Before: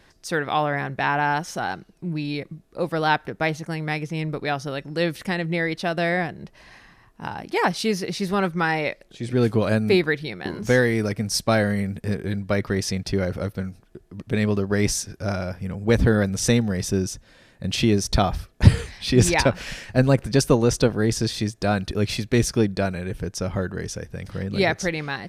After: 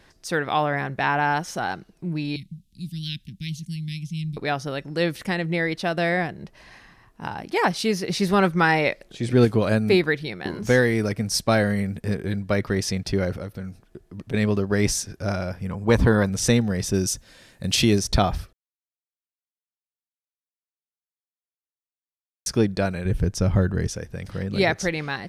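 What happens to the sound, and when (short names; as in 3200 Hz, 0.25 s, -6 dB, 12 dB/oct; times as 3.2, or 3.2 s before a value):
2.36–4.37 elliptic band-stop 200–3100 Hz, stop band 50 dB
8.1–9.45 gain +3.5 dB
13.33–14.34 compressor 3:1, threshold -30 dBFS
15.7–16.3 bell 1000 Hz +11 dB 0.43 oct
16.94–17.99 high shelf 4400 Hz +10.5 dB
18.53–22.46 mute
23.05–23.87 low shelf 190 Hz +11.5 dB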